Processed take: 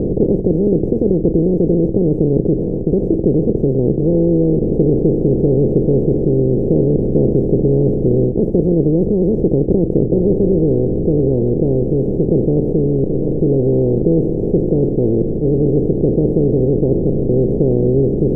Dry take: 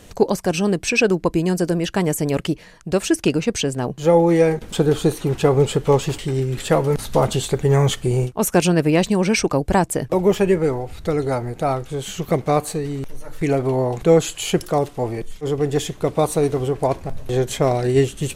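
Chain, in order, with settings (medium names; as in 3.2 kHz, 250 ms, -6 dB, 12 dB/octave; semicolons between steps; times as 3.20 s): spectral levelling over time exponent 0.2; inverse Chebyshev low-pass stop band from 1.1 kHz, stop band 50 dB; trim -2 dB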